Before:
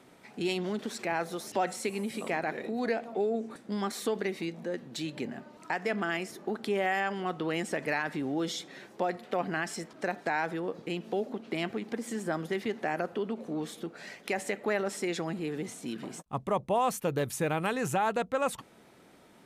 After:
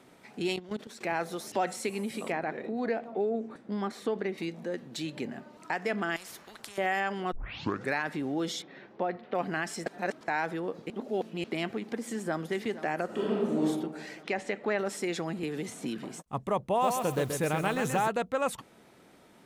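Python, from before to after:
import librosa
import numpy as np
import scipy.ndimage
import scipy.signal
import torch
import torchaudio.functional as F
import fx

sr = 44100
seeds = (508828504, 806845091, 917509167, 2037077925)

y = fx.level_steps(x, sr, step_db=16, at=(0.56, 1.01))
y = fx.lowpass(y, sr, hz=2000.0, slope=6, at=(2.32, 4.38))
y = fx.spectral_comp(y, sr, ratio=4.0, at=(6.16, 6.78))
y = fx.air_absorb(y, sr, metres=270.0, at=(8.62, 9.35))
y = fx.echo_throw(y, sr, start_s=12.04, length_s=0.4, ms=470, feedback_pct=70, wet_db=-15.0)
y = fx.reverb_throw(y, sr, start_s=13.05, length_s=0.57, rt60_s=1.3, drr_db=-5.0)
y = fx.lowpass(y, sr, hz=4900.0, slope=12, at=(14.23, 14.79))
y = fx.band_squash(y, sr, depth_pct=100, at=(15.43, 15.99))
y = fx.echo_crushed(y, sr, ms=130, feedback_pct=35, bits=8, wet_db=-5, at=(16.65, 18.08))
y = fx.edit(y, sr, fx.tape_start(start_s=7.32, length_s=0.63),
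    fx.reverse_span(start_s=9.86, length_s=0.42),
    fx.reverse_span(start_s=10.9, length_s=0.54), tone=tone)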